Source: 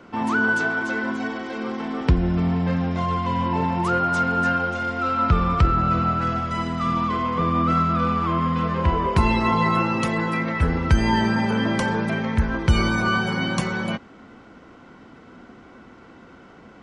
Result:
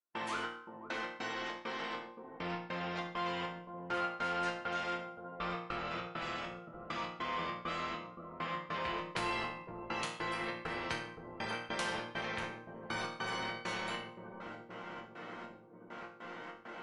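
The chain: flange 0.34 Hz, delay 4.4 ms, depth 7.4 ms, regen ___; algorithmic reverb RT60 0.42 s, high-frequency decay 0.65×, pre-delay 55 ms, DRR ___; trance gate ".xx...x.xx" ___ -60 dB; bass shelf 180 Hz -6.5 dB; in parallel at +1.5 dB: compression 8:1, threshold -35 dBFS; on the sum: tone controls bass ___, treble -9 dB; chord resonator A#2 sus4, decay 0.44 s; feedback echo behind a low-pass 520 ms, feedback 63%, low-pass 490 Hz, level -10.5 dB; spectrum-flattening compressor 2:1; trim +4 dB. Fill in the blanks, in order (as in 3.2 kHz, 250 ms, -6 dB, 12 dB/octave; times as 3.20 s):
-58%, 11 dB, 100 bpm, -14 dB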